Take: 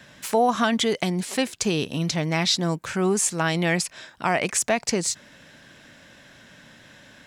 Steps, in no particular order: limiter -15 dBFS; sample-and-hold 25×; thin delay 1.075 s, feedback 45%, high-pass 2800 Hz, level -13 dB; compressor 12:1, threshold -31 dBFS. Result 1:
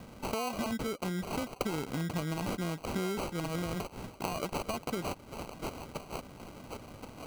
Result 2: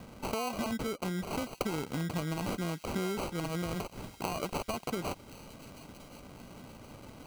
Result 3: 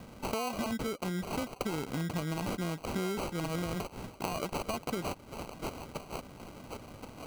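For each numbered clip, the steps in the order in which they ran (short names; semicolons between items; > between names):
thin delay > limiter > compressor > sample-and-hold; limiter > compressor > sample-and-hold > thin delay; thin delay > limiter > sample-and-hold > compressor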